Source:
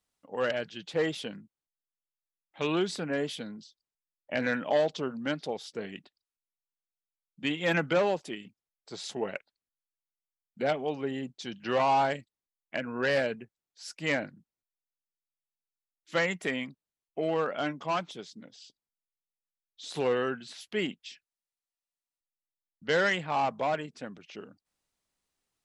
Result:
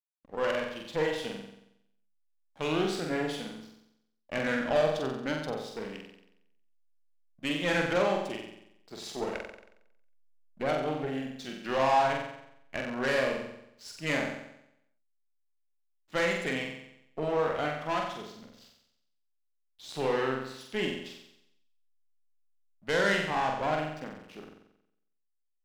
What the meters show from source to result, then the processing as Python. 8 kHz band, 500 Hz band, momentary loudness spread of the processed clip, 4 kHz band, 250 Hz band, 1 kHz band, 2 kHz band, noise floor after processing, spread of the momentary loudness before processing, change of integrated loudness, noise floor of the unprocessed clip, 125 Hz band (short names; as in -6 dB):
+1.0 dB, 0.0 dB, 18 LU, 0.0 dB, 0.0 dB, +0.5 dB, 0.0 dB, -76 dBFS, 17 LU, 0.0 dB, under -85 dBFS, +1.0 dB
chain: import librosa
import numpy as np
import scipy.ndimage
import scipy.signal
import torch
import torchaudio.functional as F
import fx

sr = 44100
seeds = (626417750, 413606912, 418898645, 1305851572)

y = fx.cheby_harmonics(x, sr, harmonics=(6,), levels_db=(-19,), full_scale_db=-15.0)
y = fx.backlash(y, sr, play_db=-46.5)
y = fx.room_flutter(y, sr, wall_m=7.8, rt60_s=0.79)
y = y * librosa.db_to_amplitude(-3.0)